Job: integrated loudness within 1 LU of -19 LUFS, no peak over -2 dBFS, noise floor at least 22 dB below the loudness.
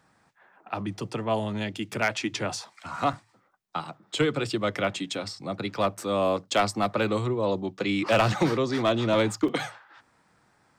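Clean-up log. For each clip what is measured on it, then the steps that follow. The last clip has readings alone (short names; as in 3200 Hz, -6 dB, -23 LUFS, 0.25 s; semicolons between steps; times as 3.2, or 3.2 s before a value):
clipped 0.3%; flat tops at -15.0 dBFS; dropouts 2; longest dropout 3.6 ms; loudness -27.5 LUFS; peak -15.0 dBFS; loudness target -19.0 LUFS
-> clip repair -15 dBFS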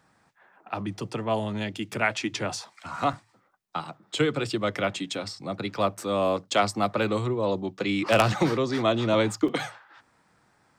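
clipped 0.0%; dropouts 2; longest dropout 3.6 ms
-> interpolate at 3.13/9.48, 3.6 ms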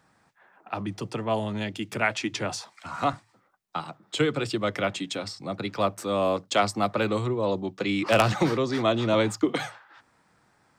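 dropouts 0; loudness -27.0 LUFS; peak -6.0 dBFS; loudness target -19.0 LUFS
-> gain +8 dB; limiter -2 dBFS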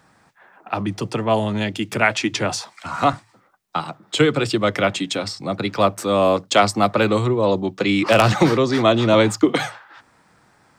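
loudness -19.5 LUFS; peak -2.0 dBFS; noise floor -58 dBFS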